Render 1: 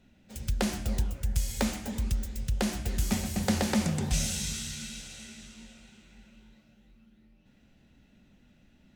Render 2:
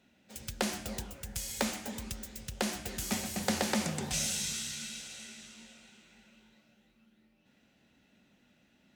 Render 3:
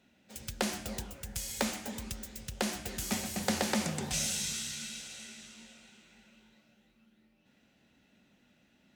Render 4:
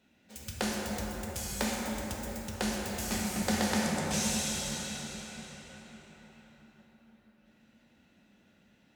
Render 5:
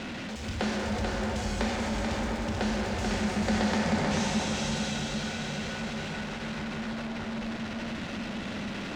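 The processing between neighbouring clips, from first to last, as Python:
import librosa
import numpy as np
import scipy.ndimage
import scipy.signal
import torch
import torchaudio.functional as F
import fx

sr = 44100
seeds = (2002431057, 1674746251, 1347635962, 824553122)

y1 = fx.highpass(x, sr, hz=370.0, slope=6)
y2 = y1
y3 = fx.rev_plate(y2, sr, seeds[0], rt60_s=4.7, hf_ratio=0.35, predelay_ms=0, drr_db=-2.5)
y3 = y3 * 10.0 ** (-2.0 / 20.0)
y4 = y3 + 0.5 * 10.0 ** (-30.0 / 20.0) * np.sign(y3)
y4 = fx.air_absorb(y4, sr, metres=130.0)
y4 = y4 + 10.0 ** (-4.0 / 20.0) * np.pad(y4, (int(437 * sr / 1000.0), 0))[:len(y4)]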